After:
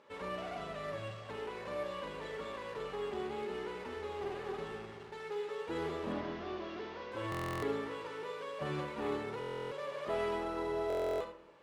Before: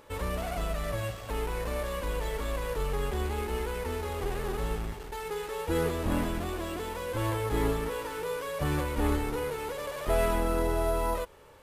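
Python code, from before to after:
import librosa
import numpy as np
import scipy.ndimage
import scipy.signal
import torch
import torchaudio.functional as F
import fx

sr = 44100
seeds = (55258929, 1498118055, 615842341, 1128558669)

y = fx.delta_mod(x, sr, bps=32000, step_db=-45.5, at=(6.12, 7.12))
y = fx.bandpass_edges(y, sr, low_hz=180.0, high_hz=4500.0)
y = fx.room_early_taps(y, sr, ms=(46, 75), db=(-9.5, -10.5))
y = fx.room_shoebox(y, sr, seeds[0], volume_m3=2000.0, walls='furnished', distance_m=1.2)
y = fx.buffer_glitch(y, sr, at_s=(7.3, 9.39, 10.88), block=1024, repeats=13)
y = y * 10.0 ** (-7.5 / 20.0)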